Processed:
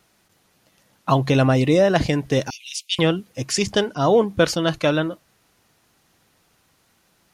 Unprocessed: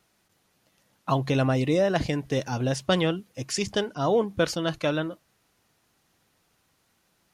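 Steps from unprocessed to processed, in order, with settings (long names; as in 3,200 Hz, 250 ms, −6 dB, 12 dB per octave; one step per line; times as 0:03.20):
0:02.50–0:02.99: Butterworth high-pass 2,200 Hz 96 dB per octave
level +6.5 dB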